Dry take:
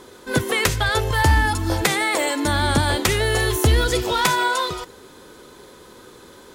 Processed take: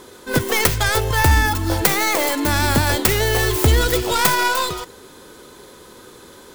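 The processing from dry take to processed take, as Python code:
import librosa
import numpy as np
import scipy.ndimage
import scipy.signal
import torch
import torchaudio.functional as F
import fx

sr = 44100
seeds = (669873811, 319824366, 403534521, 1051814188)

y = fx.tracing_dist(x, sr, depth_ms=0.47)
y = fx.high_shelf(y, sr, hz=7000.0, db=5.5)
y = F.gain(torch.from_numpy(y), 1.5).numpy()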